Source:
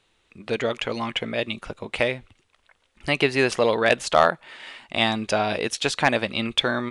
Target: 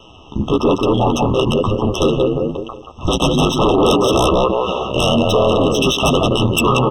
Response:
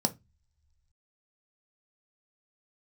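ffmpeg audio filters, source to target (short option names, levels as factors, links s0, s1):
-filter_complex "[0:a]asetrate=34006,aresample=44100,atempo=1.29684,asplit=2[s0][s1];[s1]adelay=180,lowpass=f=1400:p=1,volume=0.631,asplit=2[s2][s3];[s3]adelay=180,lowpass=f=1400:p=1,volume=0.27,asplit=2[s4][s5];[s5]adelay=180,lowpass=f=1400:p=1,volume=0.27,asplit=2[s6][s7];[s7]adelay=180,lowpass=f=1400:p=1,volume=0.27[s8];[s0][s2][s4][s6][s8]amix=inputs=5:normalize=0,adynamicsmooth=sensitivity=3.5:basefreq=6200,aeval=exprs='val(0)*sin(2*PI*61*n/s)':c=same,flanger=delay=9.1:depth=6.2:regen=2:speed=1.1:shape=sinusoidal,asplit=2[s9][s10];[s10]acompressor=threshold=0.0112:ratio=6,volume=0.794[s11];[s9][s11]amix=inputs=2:normalize=0,aeval=exprs='0.501*sin(PI/2*6.31*val(0)/0.501)':c=same,alimiter=level_in=5.31:limit=0.891:release=50:level=0:latency=1,afftfilt=real='re*eq(mod(floor(b*sr/1024/1300),2),0)':imag='im*eq(mod(floor(b*sr/1024/1300),2),0)':win_size=1024:overlap=0.75,volume=0.447"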